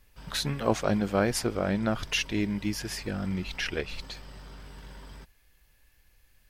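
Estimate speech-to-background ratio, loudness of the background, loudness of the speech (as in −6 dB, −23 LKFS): 18.5 dB, −48.0 LKFS, −29.5 LKFS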